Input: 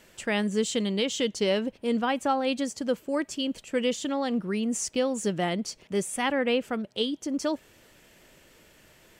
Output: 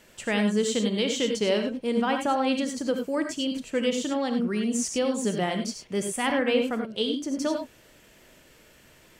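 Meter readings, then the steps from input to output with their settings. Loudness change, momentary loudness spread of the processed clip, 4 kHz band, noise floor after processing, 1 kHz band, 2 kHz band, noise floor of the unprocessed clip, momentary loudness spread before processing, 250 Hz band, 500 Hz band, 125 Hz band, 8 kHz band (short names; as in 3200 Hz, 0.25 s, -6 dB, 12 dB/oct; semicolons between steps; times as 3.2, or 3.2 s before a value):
+1.5 dB, 5 LU, +1.5 dB, -56 dBFS, +1.0 dB, +1.5 dB, -58 dBFS, 5 LU, +2.0 dB, +1.5 dB, +1.5 dB, +1.5 dB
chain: non-linear reverb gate 0.12 s rising, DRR 4.5 dB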